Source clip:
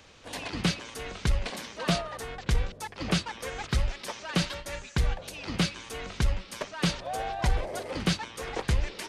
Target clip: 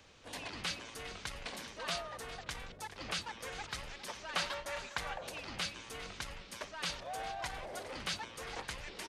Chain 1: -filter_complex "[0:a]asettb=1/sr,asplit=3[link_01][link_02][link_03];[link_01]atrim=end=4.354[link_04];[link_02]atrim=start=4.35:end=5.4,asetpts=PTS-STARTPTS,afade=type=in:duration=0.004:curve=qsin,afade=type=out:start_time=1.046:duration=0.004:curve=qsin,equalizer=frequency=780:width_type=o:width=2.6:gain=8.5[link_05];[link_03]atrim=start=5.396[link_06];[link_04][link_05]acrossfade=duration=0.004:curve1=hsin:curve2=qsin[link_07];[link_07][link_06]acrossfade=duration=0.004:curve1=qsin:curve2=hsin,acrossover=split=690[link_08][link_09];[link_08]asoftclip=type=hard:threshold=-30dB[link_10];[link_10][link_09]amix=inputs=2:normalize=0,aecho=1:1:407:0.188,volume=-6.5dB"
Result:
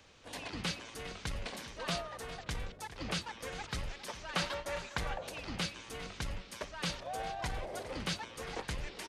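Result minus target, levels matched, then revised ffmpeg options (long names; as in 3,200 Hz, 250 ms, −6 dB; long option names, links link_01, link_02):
hard clipping: distortion −6 dB
-filter_complex "[0:a]asettb=1/sr,asplit=3[link_01][link_02][link_03];[link_01]atrim=end=4.354[link_04];[link_02]atrim=start=4.35:end=5.4,asetpts=PTS-STARTPTS,afade=type=in:duration=0.004:curve=qsin,afade=type=out:start_time=1.046:duration=0.004:curve=qsin,equalizer=frequency=780:width_type=o:width=2.6:gain=8.5[link_05];[link_03]atrim=start=5.396[link_06];[link_04][link_05]acrossfade=duration=0.004:curve1=hsin:curve2=qsin[link_07];[link_07][link_06]acrossfade=duration=0.004:curve1=qsin:curve2=hsin,acrossover=split=690[link_08][link_09];[link_08]asoftclip=type=hard:threshold=-41dB[link_10];[link_10][link_09]amix=inputs=2:normalize=0,aecho=1:1:407:0.188,volume=-6.5dB"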